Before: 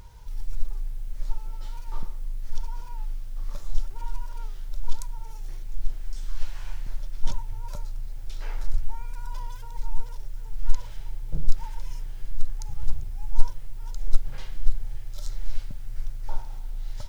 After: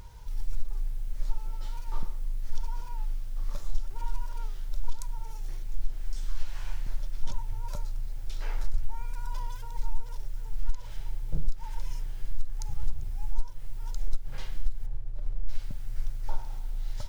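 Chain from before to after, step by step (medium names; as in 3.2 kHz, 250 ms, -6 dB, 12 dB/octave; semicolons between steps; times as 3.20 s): 14.86–15.49 s: median filter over 41 samples; compression 16:1, threshold -16 dBFS, peak gain reduction 13 dB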